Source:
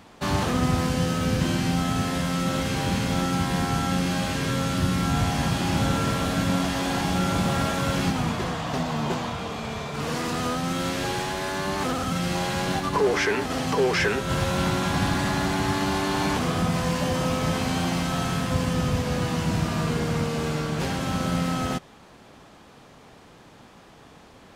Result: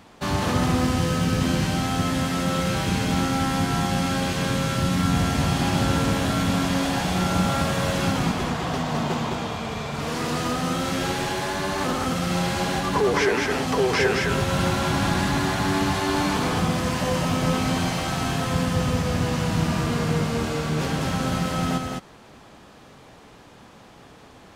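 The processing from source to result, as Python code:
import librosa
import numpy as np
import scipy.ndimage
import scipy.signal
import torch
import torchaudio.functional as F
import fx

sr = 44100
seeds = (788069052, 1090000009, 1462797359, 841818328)

y = x + 10.0 ** (-3.0 / 20.0) * np.pad(x, (int(210 * sr / 1000.0), 0))[:len(x)]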